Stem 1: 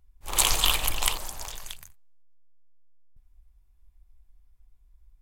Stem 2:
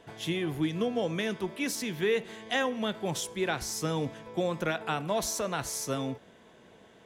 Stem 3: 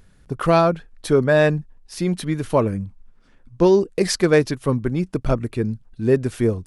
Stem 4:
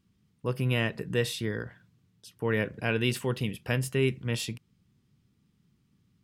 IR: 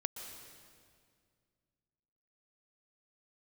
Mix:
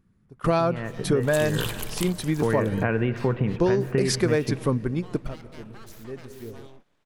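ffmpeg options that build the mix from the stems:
-filter_complex "[0:a]adelay=950,volume=0.398[s0];[1:a]asubboost=boost=7:cutoff=96,aeval=exprs='abs(val(0))':c=same,adelay=650,volume=0.211[s1];[2:a]volume=0.841,asplit=2[s2][s3];[s3]volume=0.1[s4];[3:a]acompressor=threshold=0.0126:ratio=3,lowpass=f=1900:w=0.5412,lowpass=f=1900:w=1.3066,dynaudnorm=f=220:g=11:m=4.47,volume=1.12,asplit=3[s5][s6][s7];[s6]volume=0.501[s8];[s7]apad=whole_len=293999[s9];[s2][s9]sidechaingate=range=0.0224:threshold=0.00224:ratio=16:detection=peak[s10];[4:a]atrim=start_sample=2205[s11];[s4][s8]amix=inputs=2:normalize=0[s12];[s12][s11]afir=irnorm=-1:irlink=0[s13];[s0][s1][s10][s5][s13]amix=inputs=5:normalize=0,acompressor=threshold=0.126:ratio=6"

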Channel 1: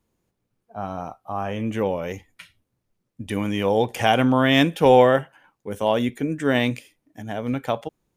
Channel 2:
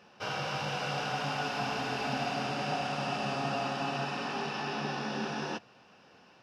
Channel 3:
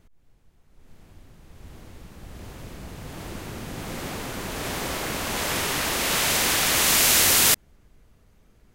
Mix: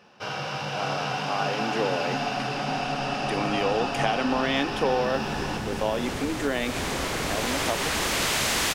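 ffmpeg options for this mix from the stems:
-filter_complex "[0:a]highpass=f=270:w=0.5412,highpass=f=270:w=1.3066,volume=0.891[s0];[1:a]volume=1.41,asplit=2[s1][s2];[s2]volume=0.668[s3];[2:a]asoftclip=type=tanh:threshold=0.106,adelay=2100,volume=1.19,asplit=2[s4][s5];[s5]volume=0.473[s6];[s0][s4]amix=inputs=2:normalize=0,lowpass=8500,acompressor=threshold=0.0794:ratio=6,volume=1[s7];[s3][s6]amix=inputs=2:normalize=0,aecho=0:1:554:1[s8];[s1][s7][s8]amix=inputs=3:normalize=0"

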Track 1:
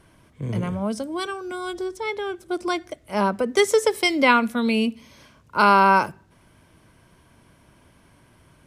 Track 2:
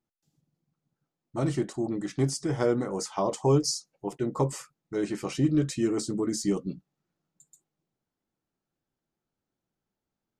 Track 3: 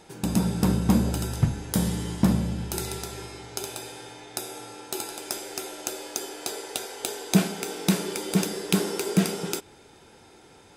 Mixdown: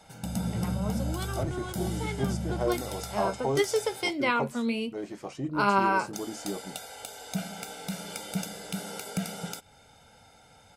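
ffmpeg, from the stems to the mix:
-filter_complex "[0:a]flanger=delay=9.6:depth=3.9:regen=49:speed=1.4:shape=triangular,volume=0.562[s0];[1:a]equalizer=f=700:w=1.5:g=12.5,volume=0.299[s1];[2:a]aecho=1:1:1.4:0.93,alimiter=limit=0.188:level=0:latency=1:release=252,volume=0.501,asplit=3[s2][s3][s4];[s2]atrim=end=4.11,asetpts=PTS-STARTPTS,afade=t=out:st=4.106:d=0.004:c=hsin[s5];[s3]atrim=start=4.11:end=6.13,asetpts=PTS-STARTPTS,volume=0[s6];[s4]atrim=start=6.13,asetpts=PTS-STARTPTS,afade=t=in:d=0.004:c=hsin[s7];[s5][s6][s7]concat=n=3:v=0:a=1[s8];[s0][s1][s8]amix=inputs=3:normalize=0"

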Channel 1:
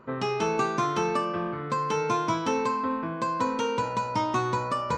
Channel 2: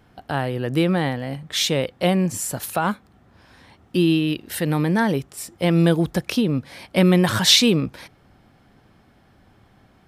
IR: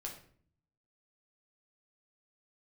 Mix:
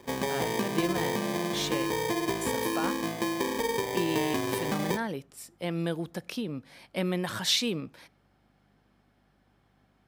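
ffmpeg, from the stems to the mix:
-filter_complex "[0:a]acompressor=threshold=0.0447:ratio=6,acrusher=samples=32:mix=1:aa=0.000001,volume=1.12,asplit=2[s0][s1];[s1]volume=0.266[s2];[1:a]aeval=exprs='val(0)+0.00355*(sin(2*PI*50*n/s)+sin(2*PI*2*50*n/s)/2+sin(2*PI*3*50*n/s)/3+sin(2*PI*4*50*n/s)/4+sin(2*PI*5*50*n/s)/5)':c=same,volume=0.251,asplit=3[s3][s4][s5];[s3]atrim=end=1.9,asetpts=PTS-STARTPTS,afade=t=out:st=1.896:d=0.004:c=hsin[s6];[s4]atrim=start=1.9:end=2.41,asetpts=PTS-STARTPTS,volume=0[s7];[s5]atrim=start=2.41,asetpts=PTS-STARTPTS,afade=t=in:d=0.004:c=hsin[s8];[s6][s7][s8]concat=n=3:v=0:a=1,asplit=2[s9][s10];[s10]volume=0.112[s11];[2:a]atrim=start_sample=2205[s12];[s2][s11]amix=inputs=2:normalize=0[s13];[s13][s12]afir=irnorm=-1:irlink=0[s14];[s0][s9][s14]amix=inputs=3:normalize=0,highpass=f=200:p=1"

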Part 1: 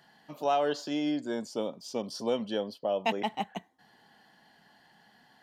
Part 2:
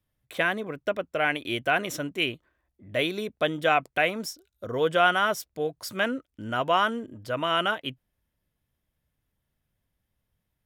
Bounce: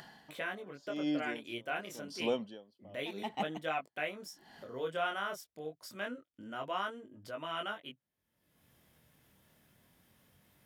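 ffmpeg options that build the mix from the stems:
-filter_complex "[0:a]aeval=exprs='val(0)*pow(10,-31*(0.5-0.5*cos(2*PI*0.88*n/s))/20)':c=same,volume=0.708[s0];[1:a]highpass=170,flanger=delay=19:depth=6.7:speed=0.27,volume=0.299[s1];[s0][s1]amix=inputs=2:normalize=0,lowshelf=f=79:g=8,acompressor=mode=upward:threshold=0.00631:ratio=2.5"

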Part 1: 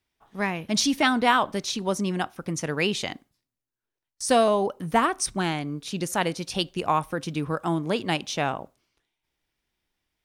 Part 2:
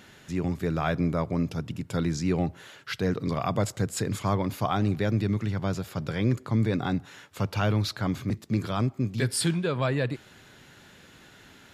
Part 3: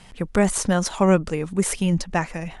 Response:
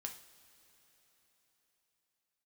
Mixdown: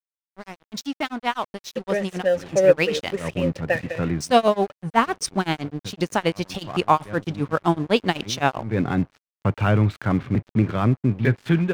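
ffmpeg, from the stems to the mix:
-filter_complex "[0:a]lowpass=6500,tremolo=f=7.8:d=0.94,volume=0.708,asplit=2[s0][s1];[1:a]lowpass=f=2600:w=0.5412,lowpass=f=2600:w=1.3066,adynamicequalizer=threshold=0.01:dfrequency=910:dqfactor=0.88:tfrequency=910:tqfactor=0.88:attack=5:release=100:ratio=0.375:range=2.5:mode=cutabove:tftype=bell,adelay=2050,volume=0.531[s2];[2:a]asplit=3[s3][s4][s5];[s3]bandpass=f=530:t=q:w=8,volume=1[s6];[s4]bandpass=f=1840:t=q:w=8,volume=0.501[s7];[s5]bandpass=f=2480:t=q:w=8,volume=0.355[s8];[s6][s7][s8]amix=inputs=3:normalize=0,adelay=1550,volume=1.33[s9];[s1]apad=whole_len=608127[s10];[s2][s10]sidechaincompress=threshold=0.00224:ratio=16:attack=9.8:release=131[s11];[s0][s11][s9]amix=inputs=3:normalize=0,agate=range=0.2:threshold=0.00355:ratio=16:detection=peak,dynaudnorm=f=470:g=9:m=5.01,aeval=exprs='sgn(val(0))*max(abs(val(0))-0.0126,0)':c=same"

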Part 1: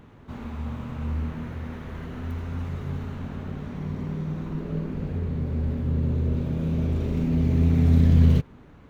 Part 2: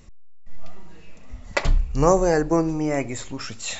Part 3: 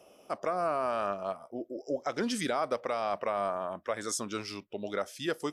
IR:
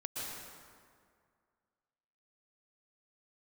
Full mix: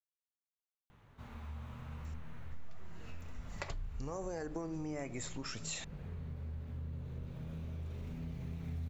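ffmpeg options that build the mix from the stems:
-filter_complex "[0:a]equalizer=f=290:t=o:w=1.6:g=-10.5,flanger=delay=5.7:depth=4.6:regen=-70:speed=0.79:shape=sinusoidal,adelay=900,volume=0.562[s0];[1:a]alimiter=limit=0.141:level=0:latency=1:release=183,adelay=2050,volume=0.794,acompressor=threshold=0.0501:ratio=6,volume=1[s1];[s0][s1]amix=inputs=2:normalize=0,highshelf=f=9900:g=5,acompressor=threshold=0.00891:ratio=3"

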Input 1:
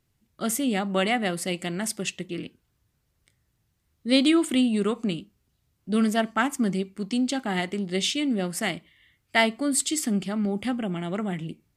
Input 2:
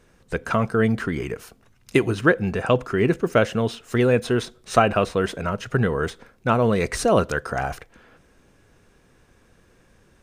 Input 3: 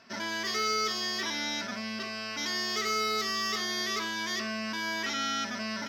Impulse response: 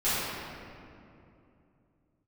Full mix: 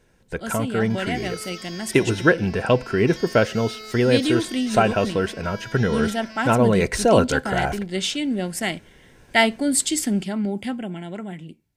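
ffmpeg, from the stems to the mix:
-filter_complex "[0:a]volume=0.562[s0];[1:a]volume=0.708[s1];[2:a]adelay=700,volume=0.299[s2];[s0][s1][s2]amix=inputs=3:normalize=0,dynaudnorm=f=140:g=21:m=3.76,asuperstop=centerf=1200:order=8:qfactor=6.6"

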